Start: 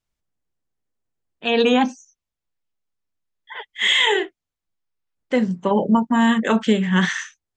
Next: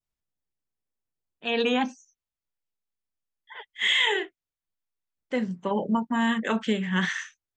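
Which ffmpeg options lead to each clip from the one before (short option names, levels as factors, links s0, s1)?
-af "adynamicequalizer=threshold=0.0251:dfrequency=2200:dqfactor=0.84:tfrequency=2200:tqfactor=0.84:attack=5:release=100:ratio=0.375:range=2:mode=boostabove:tftype=bell,volume=0.376"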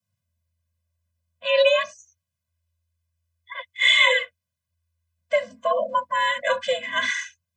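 -af "afreqshift=83,afftfilt=real='re*eq(mod(floor(b*sr/1024/240),2),0)':imag='im*eq(mod(floor(b*sr/1024/240),2),0)':win_size=1024:overlap=0.75,volume=2.82"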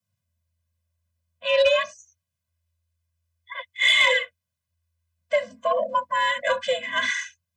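-af "asoftclip=type=tanh:threshold=0.355"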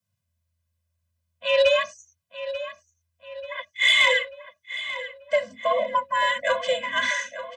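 -filter_complex "[0:a]asplit=2[s0][s1];[s1]adelay=888,lowpass=f=3700:p=1,volume=0.251,asplit=2[s2][s3];[s3]adelay=888,lowpass=f=3700:p=1,volume=0.51,asplit=2[s4][s5];[s5]adelay=888,lowpass=f=3700:p=1,volume=0.51,asplit=2[s6][s7];[s7]adelay=888,lowpass=f=3700:p=1,volume=0.51,asplit=2[s8][s9];[s9]adelay=888,lowpass=f=3700:p=1,volume=0.51[s10];[s0][s2][s4][s6][s8][s10]amix=inputs=6:normalize=0"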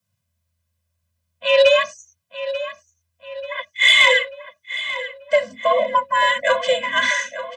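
-af "equalizer=f=67:w=4.6:g=-13.5,volume=1.88"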